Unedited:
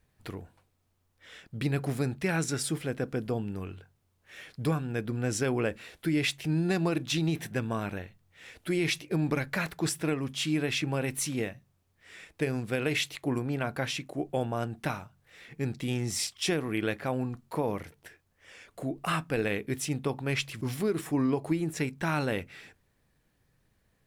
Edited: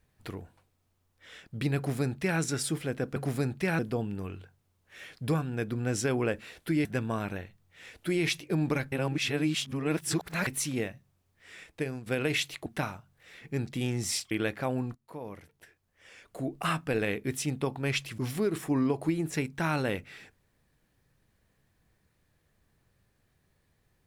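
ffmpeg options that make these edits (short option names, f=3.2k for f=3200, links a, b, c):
-filter_complex "[0:a]asplit=10[a][b][c][d][e][f][g][h][i][j];[a]atrim=end=3.162[k];[b]atrim=start=1.768:end=2.402[l];[c]atrim=start=3.158:end=6.222[m];[d]atrim=start=7.458:end=9.532[n];[e]atrim=start=9.528:end=11.082,asetpts=PTS-STARTPTS,areverse[o];[f]atrim=start=11.078:end=12.67,asetpts=PTS-STARTPTS,afade=t=out:st=1.182:d=0.41:silence=0.298538[p];[g]atrim=start=12.67:end=13.272,asetpts=PTS-STARTPTS,afade=t=in:d=0.004:c=hsin:silence=0.298538[q];[h]atrim=start=14.728:end=16.382[r];[i]atrim=start=16.738:end=17.38,asetpts=PTS-STARTPTS,afade=t=out:st=0.638:d=0.004:c=hsin:silence=0.141254[s];[j]atrim=start=17.38,asetpts=PTS-STARTPTS,afade=t=in:d=1.56:silence=0.141254[t];[k][l]acrossfade=d=0.004:c1=hsin:c2=hsin[u];[u][m]acrossfade=d=0.004:c1=hsin:c2=hsin[v];[v][n]acrossfade=d=0.004:c1=hsin:c2=hsin[w];[w][o]acrossfade=d=0.004:c1=hsin:c2=hsin[x];[p][q]concat=n=2:v=0:a=1[y];[x][y]acrossfade=d=0.004:c1=hsin:c2=hsin[z];[z][r]acrossfade=d=0.004:c1=hsin:c2=hsin[aa];[s][t]concat=n=2:v=0:a=1[ab];[aa][ab]acrossfade=d=0.004:c1=hsin:c2=hsin"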